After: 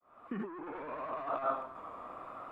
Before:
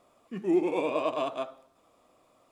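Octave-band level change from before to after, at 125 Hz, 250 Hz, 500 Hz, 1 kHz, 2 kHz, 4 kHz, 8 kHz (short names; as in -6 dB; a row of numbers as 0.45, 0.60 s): -6.5 dB, -13.0 dB, -11.0 dB, -1.5 dB, -6.0 dB, under -15 dB, n/a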